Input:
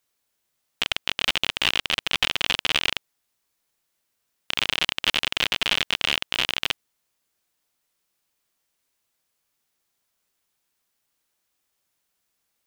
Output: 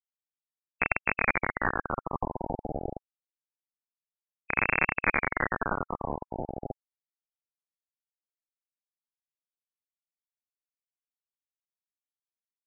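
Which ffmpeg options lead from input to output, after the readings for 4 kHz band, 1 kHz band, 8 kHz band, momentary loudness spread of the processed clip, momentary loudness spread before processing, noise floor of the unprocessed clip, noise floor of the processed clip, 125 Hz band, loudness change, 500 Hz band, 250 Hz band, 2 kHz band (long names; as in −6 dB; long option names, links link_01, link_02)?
below −40 dB, +2.0 dB, below −40 dB, 13 LU, 5 LU, −77 dBFS, below −85 dBFS, +4.0 dB, −6.0 dB, +3.5 dB, +3.5 dB, −3.0 dB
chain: -af "acrusher=bits=5:mix=0:aa=0.000001,afftfilt=real='re*lt(b*sr/1024,830*pow(2700/830,0.5+0.5*sin(2*PI*0.26*pts/sr)))':imag='im*lt(b*sr/1024,830*pow(2700/830,0.5+0.5*sin(2*PI*0.26*pts/sr)))':win_size=1024:overlap=0.75,volume=3.5dB"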